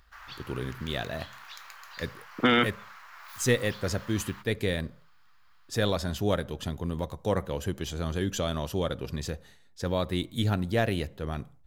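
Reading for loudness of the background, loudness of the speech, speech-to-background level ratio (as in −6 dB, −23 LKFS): −46.0 LKFS, −30.5 LKFS, 15.5 dB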